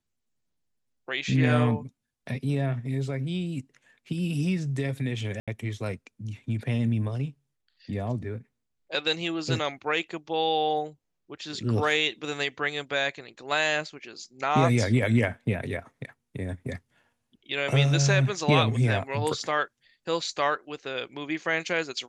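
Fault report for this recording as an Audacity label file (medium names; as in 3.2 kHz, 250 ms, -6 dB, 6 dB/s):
5.400000	5.480000	dropout 76 ms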